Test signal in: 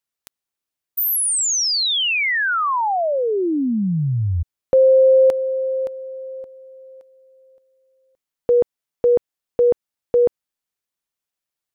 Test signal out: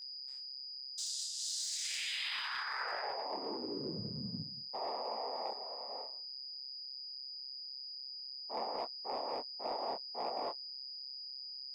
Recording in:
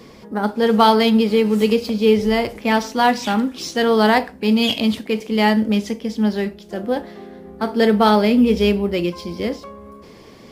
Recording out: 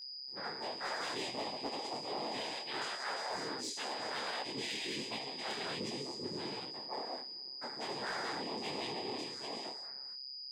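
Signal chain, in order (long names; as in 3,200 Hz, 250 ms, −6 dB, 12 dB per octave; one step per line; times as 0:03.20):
spectral dynamics exaggerated over time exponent 1.5
reverb whose tail is shaped and stops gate 250 ms flat, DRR −1 dB
noise gate with hold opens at −43 dBFS, closes at −47 dBFS, hold 46 ms, range −26 dB
bad sample-rate conversion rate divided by 2×, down none, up zero stuff
cochlear-implant simulation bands 6
high-pass filter 950 Hz 6 dB per octave
reversed playback
downward compressor 5 to 1, threshold −30 dBFS
reversed playback
gain into a clipping stage and back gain 24 dB
steady tone 4,900 Hz −36 dBFS
micro pitch shift up and down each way 47 cents
level −4.5 dB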